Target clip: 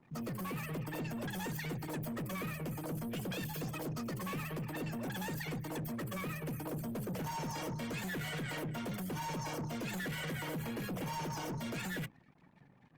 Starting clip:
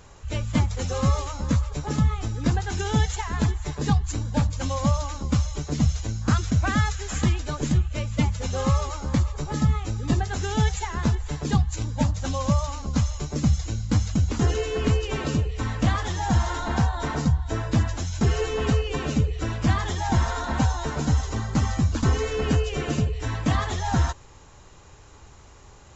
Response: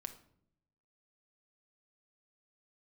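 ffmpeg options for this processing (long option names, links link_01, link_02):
-af "highpass=frequency=55:width=0.5412,highpass=frequency=55:width=1.3066,bandreject=frequency=1800:width=8,afftfilt=real='re*gte(hypot(re,im),0.00794)':imag='im*gte(hypot(re,im),0.00794)':win_size=1024:overlap=0.75,bandreject=frequency=50:width_type=h:width=6,bandreject=frequency=100:width_type=h:width=6,bandreject=frequency=150:width_type=h:width=6,bandreject=frequency=200:width_type=h:width=6,bandreject=frequency=250:width_type=h:width=6,alimiter=limit=-19.5dB:level=0:latency=1:release=39,aeval=exprs='sgn(val(0))*max(abs(val(0))-0.00126,0)':channel_layout=same,asetrate=46722,aresample=44100,atempo=0.943874,asoftclip=type=tanh:threshold=-30dB,asetrate=88200,aresample=44100,volume=-6dB" -ar 48000 -c:a libopus -b:a 32k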